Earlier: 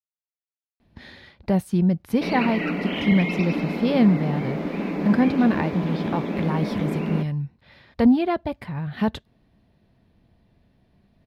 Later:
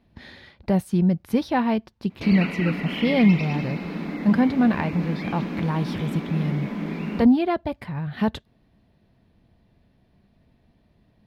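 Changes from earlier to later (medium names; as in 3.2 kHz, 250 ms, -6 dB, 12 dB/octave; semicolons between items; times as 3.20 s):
speech: entry -0.80 s; background: add peaking EQ 530 Hz -8 dB 1.7 oct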